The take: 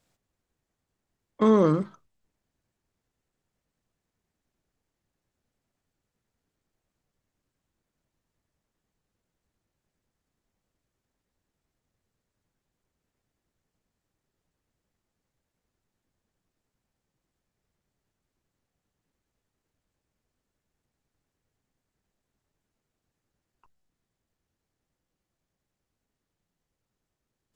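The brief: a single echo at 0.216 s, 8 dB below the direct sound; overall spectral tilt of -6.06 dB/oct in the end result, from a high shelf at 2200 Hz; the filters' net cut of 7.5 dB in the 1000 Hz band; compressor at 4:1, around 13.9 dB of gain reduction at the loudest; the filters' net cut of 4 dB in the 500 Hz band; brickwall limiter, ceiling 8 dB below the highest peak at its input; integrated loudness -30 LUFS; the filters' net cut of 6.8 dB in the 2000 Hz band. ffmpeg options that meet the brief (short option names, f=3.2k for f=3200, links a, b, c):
-af "equalizer=f=500:t=o:g=-3.5,equalizer=f=1k:t=o:g=-6.5,equalizer=f=2k:t=o:g=-8.5,highshelf=f=2.2k:g=5,acompressor=threshold=-35dB:ratio=4,alimiter=level_in=6.5dB:limit=-24dB:level=0:latency=1,volume=-6.5dB,aecho=1:1:216:0.398,volume=11dB"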